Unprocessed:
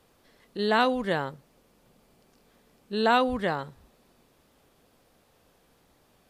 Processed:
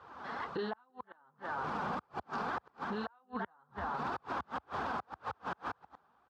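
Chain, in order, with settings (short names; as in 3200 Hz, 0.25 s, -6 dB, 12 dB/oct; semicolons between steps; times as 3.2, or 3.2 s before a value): recorder AGC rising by 45 dB/s; flange 1.9 Hz, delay 1.5 ms, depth 3.8 ms, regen -15%; reverse; compressor 10:1, threshold -36 dBFS, peak gain reduction 17.5 dB; reverse; band shelf 1100 Hz +14.5 dB 1.3 oct; on a send: echo 0.339 s -9.5 dB; on the sum: flipped gate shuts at -23 dBFS, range -41 dB; HPF 71 Hz 24 dB/oct; air absorption 190 m; limiter -33 dBFS, peak gain reduction 10 dB; gain +4.5 dB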